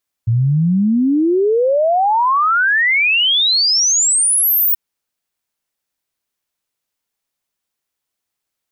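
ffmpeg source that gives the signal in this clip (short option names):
-f lavfi -i "aevalsrc='0.282*clip(min(t,4.48-t)/0.01,0,1)*sin(2*PI*110*4.48/log(16000/110)*(exp(log(16000/110)*t/4.48)-1))':d=4.48:s=44100"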